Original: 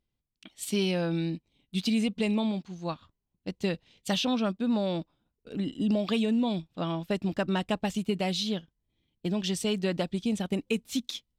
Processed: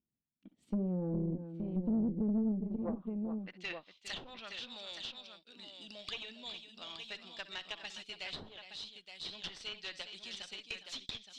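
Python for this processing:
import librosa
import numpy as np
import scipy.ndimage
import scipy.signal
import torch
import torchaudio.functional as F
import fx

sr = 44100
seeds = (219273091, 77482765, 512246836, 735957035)

y = fx.filter_sweep_bandpass(x, sr, from_hz=220.0, to_hz=4200.0, start_s=2.53, end_s=3.86, q=1.6)
y = fx.echo_multitap(y, sr, ms=(60, 67, 409, 870), db=(-19.0, -18.0, -10.5, -8.0))
y = fx.tube_stage(y, sr, drive_db=30.0, bias=0.65)
y = fx.env_lowpass_down(y, sr, base_hz=490.0, full_db=-32.5)
y = fx.dynamic_eq(y, sr, hz=1900.0, q=2.1, threshold_db=-59.0, ratio=4.0, max_db=4)
y = y * 10.0 ** (2.0 / 20.0)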